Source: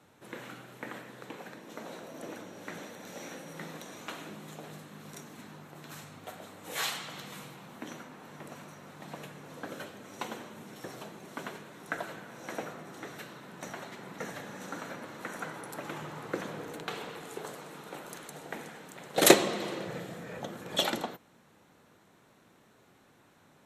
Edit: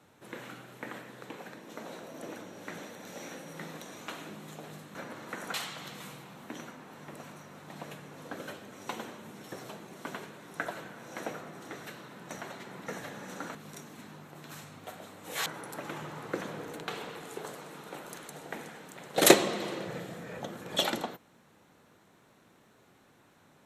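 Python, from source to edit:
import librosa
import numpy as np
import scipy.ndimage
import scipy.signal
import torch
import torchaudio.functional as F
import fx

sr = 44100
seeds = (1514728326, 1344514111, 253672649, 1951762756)

y = fx.edit(x, sr, fx.swap(start_s=4.95, length_s=1.91, other_s=14.87, other_length_s=0.59), tone=tone)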